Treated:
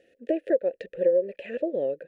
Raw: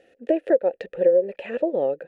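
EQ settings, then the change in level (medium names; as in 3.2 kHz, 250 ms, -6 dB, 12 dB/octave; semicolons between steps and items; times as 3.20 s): high-order bell 1 kHz -13.5 dB 1 oct; -4.0 dB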